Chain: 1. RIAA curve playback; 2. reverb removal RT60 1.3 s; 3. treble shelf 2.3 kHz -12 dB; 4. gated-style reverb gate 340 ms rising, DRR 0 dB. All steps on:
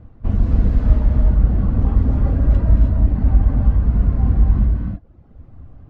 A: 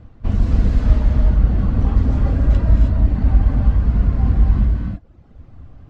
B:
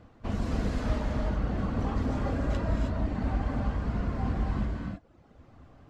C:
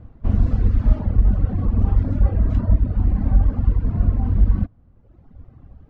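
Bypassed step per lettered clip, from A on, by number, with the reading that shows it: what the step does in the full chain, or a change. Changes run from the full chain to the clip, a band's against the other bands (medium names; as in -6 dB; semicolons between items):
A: 3, 1 kHz band +1.5 dB; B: 1, 125 Hz band -12.0 dB; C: 4, momentary loudness spread change -2 LU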